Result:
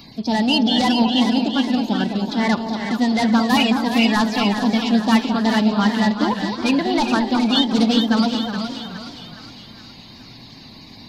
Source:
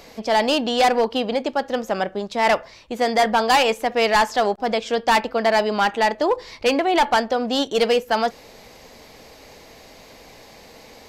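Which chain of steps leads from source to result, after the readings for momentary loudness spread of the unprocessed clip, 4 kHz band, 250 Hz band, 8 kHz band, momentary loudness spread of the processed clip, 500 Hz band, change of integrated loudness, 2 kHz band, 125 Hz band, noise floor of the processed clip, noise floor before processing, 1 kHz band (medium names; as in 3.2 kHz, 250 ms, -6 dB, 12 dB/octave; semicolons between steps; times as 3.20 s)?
6 LU, +4.0 dB, +11.0 dB, -1.0 dB, 9 LU, -6.0 dB, +2.0 dB, -1.0 dB, no reading, -42 dBFS, -46 dBFS, -3.5 dB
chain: coarse spectral quantiser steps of 30 dB; ten-band graphic EQ 125 Hz +10 dB, 250 Hz +10 dB, 500 Hz -11 dB, 2 kHz -7 dB, 4 kHz +11 dB, 8 kHz -9 dB; on a send: two-band feedback delay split 1.2 kHz, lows 213 ms, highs 416 ms, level -6.5 dB; on the sum: modulated delay 369 ms, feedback 36%, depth 165 cents, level -10.5 dB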